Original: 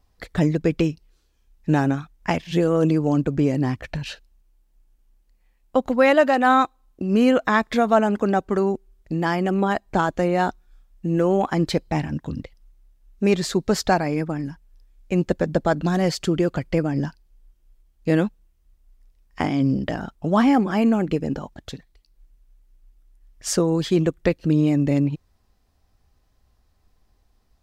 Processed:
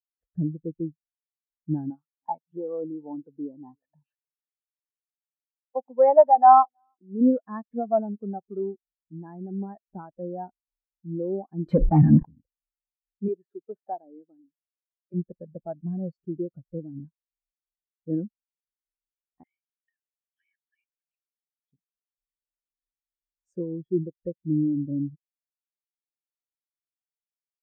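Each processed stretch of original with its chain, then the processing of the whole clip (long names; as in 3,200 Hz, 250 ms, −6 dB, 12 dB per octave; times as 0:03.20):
0:01.90–0:07.21: high-pass filter 310 Hz 6 dB per octave + parametric band 900 Hz +10 dB 0.58 octaves + single-tap delay 318 ms −22 dB
0:11.66–0:12.25: low-shelf EQ 240 Hz +9 dB + mid-hump overdrive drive 33 dB, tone 5,200 Hz, clips at −5 dBFS + level that may fall only so fast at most 55 dB per second
0:13.28–0:15.14: high-pass filter 310 Hz + treble cut that deepens with the level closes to 1,500 Hz, closed at −17.5 dBFS
0:19.43–0:21.72: Butterworth high-pass 1,700 Hz 72 dB per octave + parametric band 4,600 Hz +6.5 dB 2.2 octaves
whole clip: parametric band 4,100 Hz −9.5 dB 1.6 octaves; notch filter 2,000 Hz, Q 16; every bin expanded away from the loudest bin 2.5 to 1; level −1.5 dB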